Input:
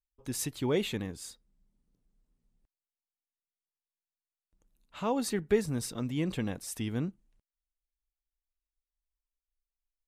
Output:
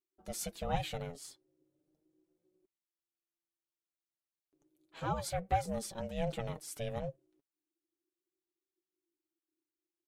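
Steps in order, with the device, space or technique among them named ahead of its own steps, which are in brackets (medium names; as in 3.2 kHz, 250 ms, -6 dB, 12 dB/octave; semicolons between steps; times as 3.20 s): alien voice (ring modulator 340 Hz; flange 0.35 Hz, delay 4.8 ms, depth 2.8 ms, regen +31%); trim +1.5 dB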